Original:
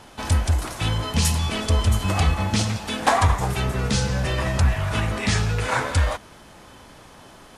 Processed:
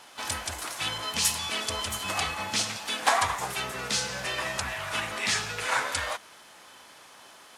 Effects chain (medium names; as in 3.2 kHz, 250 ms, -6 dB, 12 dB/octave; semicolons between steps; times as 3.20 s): harmony voices +5 st -15 dB; high-pass 1.3 kHz 6 dB/octave